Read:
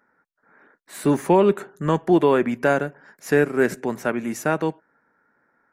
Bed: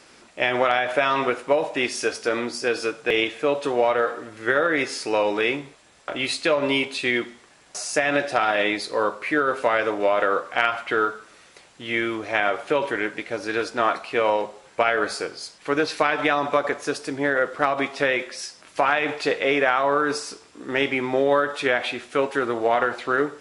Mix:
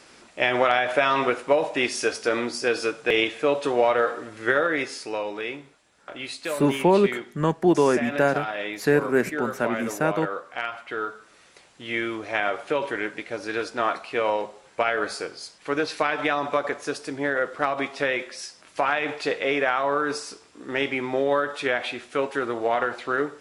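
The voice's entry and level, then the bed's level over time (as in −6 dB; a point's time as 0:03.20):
5.55 s, −2.0 dB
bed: 0:04.48 0 dB
0:05.31 −9 dB
0:10.89 −9 dB
0:11.48 −3 dB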